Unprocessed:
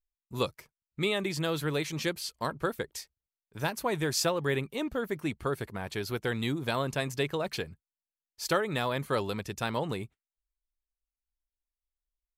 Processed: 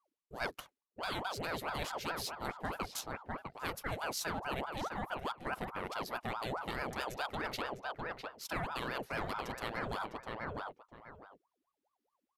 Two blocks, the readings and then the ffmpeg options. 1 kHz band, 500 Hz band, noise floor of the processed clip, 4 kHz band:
−2.0 dB, −10.0 dB, below −85 dBFS, −7.5 dB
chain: -filter_complex "[0:a]adynamicsmooth=sensitivity=8:basefreq=6400,asplit=2[link_01][link_02];[link_02]adelay=654,lowpass=frequency=1800:poles=1,volume=-9dB,asplit=2[link_03][link_04];[link_04]adelay=654,lowpass=frequency=1800:poles=1,volume=0.16[link_05];[link_01][link_03][link_05]amix=inputs=3:normalize=0,areverse,acompressor=threshold=-42dB:ratio=4,areverse,equalizer=frequency=12000:width_type=o:width=0.32:gain=14,aeval=exprs='val(0)*sin(2*PI*710*n/s+710*0.65/4.7*sin(2*PI*4.7*n/s))':channel_layout=same,volume=7dB"

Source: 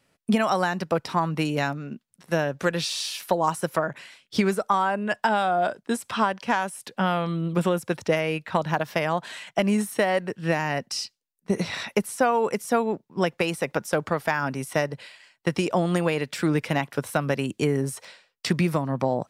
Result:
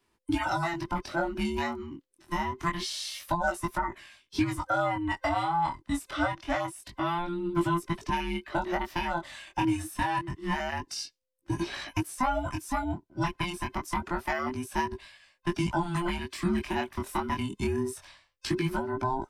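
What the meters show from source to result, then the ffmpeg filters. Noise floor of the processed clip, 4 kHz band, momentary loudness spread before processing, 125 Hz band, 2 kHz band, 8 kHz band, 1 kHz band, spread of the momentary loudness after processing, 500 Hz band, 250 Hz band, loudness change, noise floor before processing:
−73 dBFS, −5.0 dB, 7 LU, −6.0 dB, −5.0 dB, −6.0 dB, −3.5 dB, 7 LU, −9.5 dB, −5.0 dB, −5.5 dB, −74 dBFS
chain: -filter_complex "[0:a]afftfilt=real='real(if(between(b,1,1008),(2*floor((b-1)/24)+1)*24-b,b),0)':imag='imag(if(between(b,1,1008),(2*floor((b-1)/24)+1)*24-b,b),0)*if(between(b,1,1008),-1,1)':win_size=2048:overlap=0.75,lowshelf=frequency=120:gain=8,flanger=delay=17.5:depth=7.5:speed=0.26,acrossover=split=140|1200[link_01][link_02][link_03];[link_01]acompressor=threshold=-34dB:ratio=6[link_04];[link_04][link_02][link_03]amix=inputs=3:normalize=0,volume=-3dB"

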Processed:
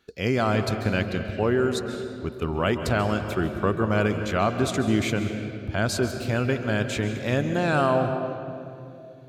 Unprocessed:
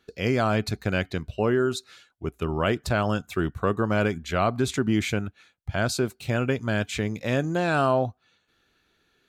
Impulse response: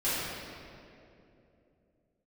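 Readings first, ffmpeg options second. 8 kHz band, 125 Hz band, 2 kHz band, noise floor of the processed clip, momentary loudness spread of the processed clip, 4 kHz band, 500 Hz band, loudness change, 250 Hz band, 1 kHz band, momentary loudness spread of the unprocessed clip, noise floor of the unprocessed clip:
+0.5 dB, +1.5 dB, +1.0 dB, −43 dBFS, 10 LU, +0.5 dB, +1.0 dB, +1.0 dB, +1.5 dB, +1.0 dB, 8 LU, −69 dBFS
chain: -filter_complex "[0:a]asplit=2[link_01][link_02];[1:a]atrim=start_sample=2205,adelay=132[link_03];[link_02][link_03]afir=irnorm=-1:irlink=0,volume=-17.5dB[link_04];[link_01][link_04]amix=inputs=2:normalize=0"

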